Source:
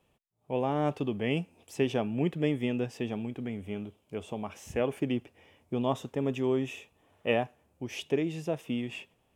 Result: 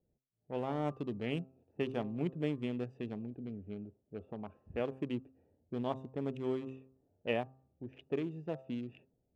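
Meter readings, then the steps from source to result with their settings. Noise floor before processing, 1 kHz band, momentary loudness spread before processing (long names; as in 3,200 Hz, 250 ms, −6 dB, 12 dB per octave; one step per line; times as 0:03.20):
−72 dBFS, −7.5 dB, 10 LU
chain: adaptive Wiener filter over 41 samples
low-pass that shuts in the quiet parts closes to 770 Hz, open at −28 dBFS
hum removal 131.6 Hz, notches 10
level −6 dB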